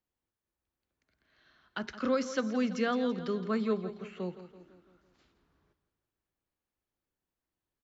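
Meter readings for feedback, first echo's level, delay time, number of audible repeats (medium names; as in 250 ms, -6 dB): 52%, -13.0 dB, 167 ms, 4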